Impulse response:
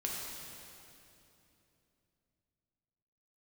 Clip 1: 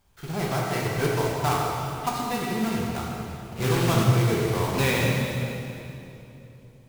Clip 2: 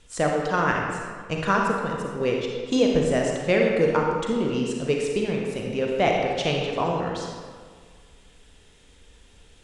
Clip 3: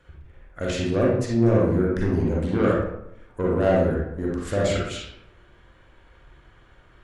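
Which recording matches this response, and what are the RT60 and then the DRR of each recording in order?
1; 3.0, 1.8, 0.80 s; -3.5, -0.5, -4.5 dB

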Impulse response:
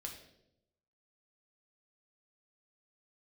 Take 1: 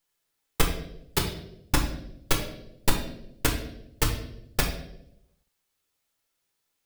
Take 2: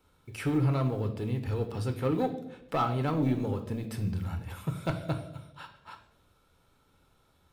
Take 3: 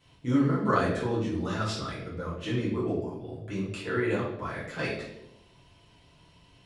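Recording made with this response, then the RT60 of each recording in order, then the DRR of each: 1; 0.80, 0.80, 0.80 s; 1.0, 5.5, -7.5 dB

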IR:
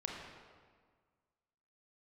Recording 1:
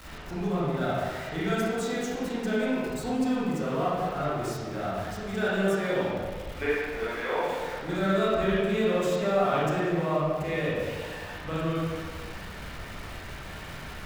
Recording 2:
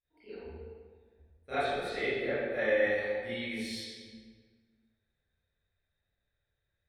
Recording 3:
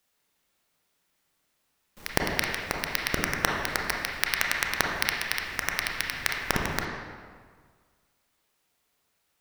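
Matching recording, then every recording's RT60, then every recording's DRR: 3; 1.7, 1.7, 1.7 s; -9.0, -18.5, -1.0 dB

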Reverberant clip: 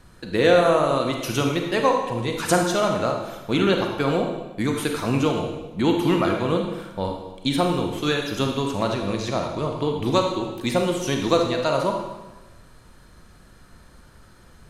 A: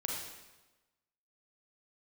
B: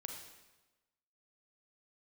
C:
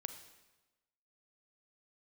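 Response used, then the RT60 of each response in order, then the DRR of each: B; 1.1, 1.1, 1.1 s; -2.0, 2.0, 8.0 dB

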